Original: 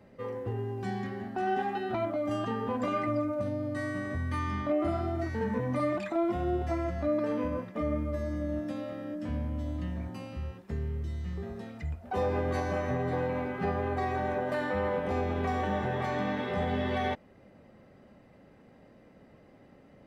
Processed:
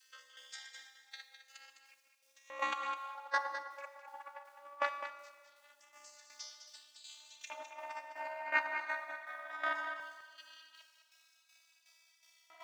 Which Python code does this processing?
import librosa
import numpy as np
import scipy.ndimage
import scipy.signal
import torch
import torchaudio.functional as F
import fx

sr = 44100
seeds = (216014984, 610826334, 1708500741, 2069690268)

p1 = fx.vocoder_glide(x, sr, note=60, semitones=4)
p2 = scipy.signal.sosfilt(scipy.signal.butter(2, 730.0, 'highpass', fs=sr, output='sos'), p1)
p3 = fx.tilt_eq(p2, sr, slope=2.0)
p4 = p3 + 0.95 * np.pad(p3, (int(7.0 * sr / 1000.0), 0))[:len(p3)]
p5 = fx.dynamic_eq(p4, sr, hz=930.0, q=0.93, threshold_db=-50.0, ratio=4.0, max_db=6)
p6 = fx.over_compress(p5, sr, threshold_db=-45.0, ratio=-0.5)
p7 = fx.dmg_noise_colour(p6, sr, seeds[0], colour='pink', level_db=-80.0)
p8 = fx.tremolo_shape(p7, sr, shape='saw_down', hz=1.7, depth_pct=75)
p9 = fx.stretch_grains(p8, sr, factor=0.63, grain_ms=30.0)
p10 = fx.filter_lfo_highpass(p9, sr, shape='square', hz=0.2, low_hz=950.0, high_hz=5300.0, q=1.0)
p11 = p10 + fx.echo_single(p10, sr, ms=207, db=-9.0, dry=0)
p12 = fx.rev_schroeder(p11, sr, rt60_s=1.7, comb_ms=27, drr_db=11.0)
y = F.gain(torch.from_numpy(p12), 13.0).numpy()